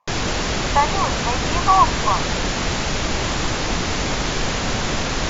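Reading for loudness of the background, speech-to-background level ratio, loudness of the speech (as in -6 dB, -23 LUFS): -22.0 LUFS, 1.5 dB, -20.5 LUFS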